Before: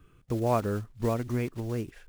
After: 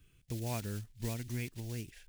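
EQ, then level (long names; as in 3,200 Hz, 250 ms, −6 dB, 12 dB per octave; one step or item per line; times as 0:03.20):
guitar amp tone stack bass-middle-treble 5-5-5
dynamic equaliser 590 Hz, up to −5 dB, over −57 dBFS, Q 1.5
parametric band 1,200 Hz −14.5 dB 0.61 octaves
+8.5 dB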